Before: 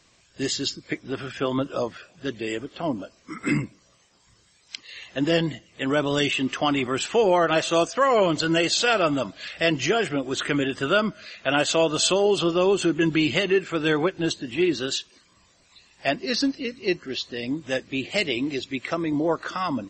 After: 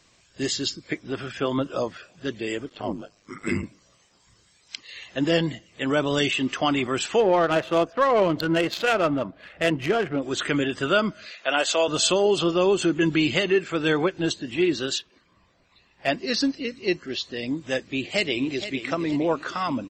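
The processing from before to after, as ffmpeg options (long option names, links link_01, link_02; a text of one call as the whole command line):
ffmpeg -i in.wav -filter_complex "[0:a]asplit=3[link_01][link_02][link_03];[link_01]afade=type=out:start_time=2.69:duration=0.02[link_04];[link_02]aeval=exprs='val(0)*sin(2*PI*51*n/s)':channel_layout=same,afade=type=in:start_time=2.69:duration=0.02,afade=type=out:start_time=3.62:duration=0.02[link_05];[link_03]afade=type=in:start_time=3.62:duration=0.02[link_06];[link_04][link_05][link_06]amix=inputs=3:normalize=0,asettb=1/sr,asplit=3[link_07][link_08][link_09];[link_07]atrim=end=7.204[link_10];[link_08]atrim=start=7.2:end=10.22,asetpts=PTS-STARTPTS,afade=type=in:duration=0.004:curve=qsin,afade=type=out:start_time=3.016:duration=0.004:curve=qsin,adynamicsmooth=sensitivity=1:basefreq=1300[link_11];[link_09]atrim=start=10.216[link_12];[link_10][link_11]acrossfade=duration=0.004:curve1=hsin:curve2=qsin[link_13];[link_13][link_12]acrossfade=duration=0.004:curve1=qsin:curve2=hsin,asettb=1/sr,asplit=3[link_14][link_15][link_16];[link_14]atrim=end=11.314[link_17];[link_15]atrim=start=11.31:end=11.88,asetpts=PTS-STARTPTS,afade=type=in:duration=0.004:curve=qsin,afade=type=out:start_time=0.566:duration=0.004:curve=qsin,highpass=430[link_18];[link_16]atrim=start=11.876[link_19];[link_17][link_18]acrossfade=duration=0.004:curve1=hsin:curve2=qsin[link_20];[link_20][link_19]acrossfade=duration=0.004:curve1=qsin:curve2=hsin,asplit=3[link_21][link_22][link_23];[link_21]afade=type=out:start_time=14.98:duration=0.02[link_24];[link_22]adynamicsmooth=sensitivity=2:basefreq=3100,afade=type=in:start_time=14.98:duration=0.02,afade=type=out:start_time=16.07:duration=0.02[link_25];[link_23]afade=type=in:start_time=16.07:duration=0.02[link_26];[link_24][link_25][link_26]amix=inputs=3:normalize=0,asplit=2[link_27][link_28];[link_28]afade=type=in:start_time=17.87:duration=0.01,afade=type=out:start_time=18.78:duration=0.01,aecho=0:1:470|940|1410|1880|2350:0.266073|0.119733|0.0538797|0.0242459|0.0109106[link_29];[link_27][link_29]amix=inputs=2:normalize=0" out.wav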